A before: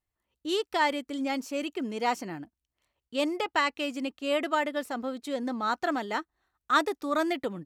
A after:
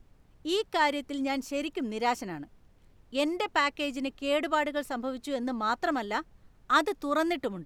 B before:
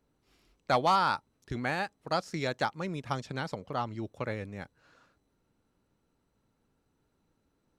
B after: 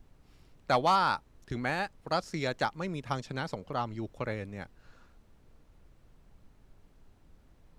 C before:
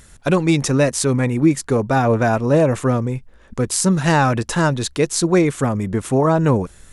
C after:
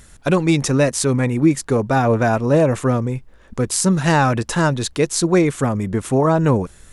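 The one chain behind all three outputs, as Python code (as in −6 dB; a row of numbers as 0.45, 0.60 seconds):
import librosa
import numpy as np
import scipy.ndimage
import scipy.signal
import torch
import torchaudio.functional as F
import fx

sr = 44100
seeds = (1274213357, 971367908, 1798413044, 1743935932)

y = fx.dmg_noise_colour(x, sr, seeds[0], colour='brown', level_db=-57.0)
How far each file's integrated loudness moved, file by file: 0.0, 0.0, 0.0 LU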